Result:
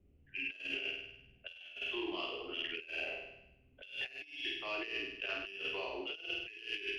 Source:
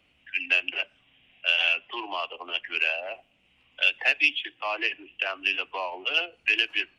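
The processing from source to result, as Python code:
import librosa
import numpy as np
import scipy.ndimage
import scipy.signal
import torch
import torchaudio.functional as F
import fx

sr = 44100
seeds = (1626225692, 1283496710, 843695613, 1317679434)

p1 = fx.peak_eq(x, sr, hz=400.0, db=13.0, octaves=0.21)
p2 = fx.env_lowpass(p1, sr, base_hz=790.0, full_db=-23.0)
p3 = fx.tone_stack(p2, sr, knobs='10-0-1')
p4 = fx.doubler(p3, sr, ms=36.0, db=-6)
p5 = p4 + fx.room_flutter(p4, sr, wall_m=8.7, rt60_s=0.84, dry=0)
p6 = fx.over_compress(p5, sr, threshold_db=-52.0, ratio=-0.5)
y = p6 * 10.0 ** (11.5 / 20.0)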